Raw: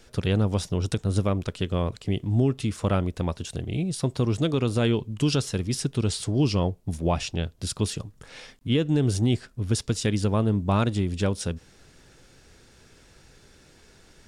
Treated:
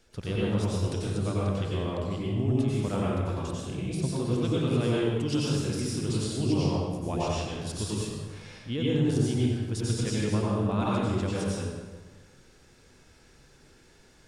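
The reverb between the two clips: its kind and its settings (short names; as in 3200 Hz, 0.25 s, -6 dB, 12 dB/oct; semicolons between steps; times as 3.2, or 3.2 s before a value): plate-style reverb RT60 1.4 s, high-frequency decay 0.65×, pre-delay 80 ms, DRR -6.5 dB; gain -10 dB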